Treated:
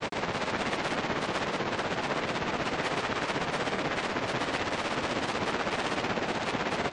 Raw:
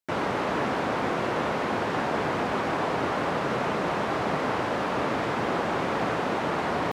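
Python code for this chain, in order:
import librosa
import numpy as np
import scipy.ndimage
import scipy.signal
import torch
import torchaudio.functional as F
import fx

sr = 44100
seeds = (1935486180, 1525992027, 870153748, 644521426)

p1 = fx.self_delay(x, sr, depth_ms=0.43)
p2 = scipy.signal.sosfilt(scipy.signal.butter(16, 8600.0, 'lowpass', fs=sr, output='sos'), p1)
p3 = fx.granulator(p2, sr, seeds[0], grain_ms=100.0, per_s=16.0, spray_ms=100.0, spread_st=3)
y = p3 + fx.echo_single(p3, sr, ms=563, db=-13.0, dry=0)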